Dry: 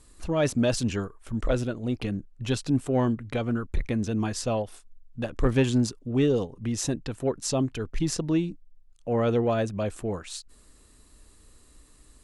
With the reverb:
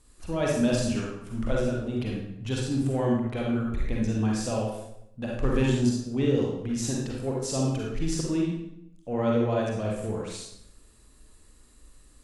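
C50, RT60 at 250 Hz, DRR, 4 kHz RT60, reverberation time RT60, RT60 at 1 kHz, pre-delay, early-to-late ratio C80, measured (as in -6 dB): -0.5 dB, 0.85 s, -3.0 dB, 0.65 s, 0.80 s, 0.75 s, 37 ms, 4.5 dB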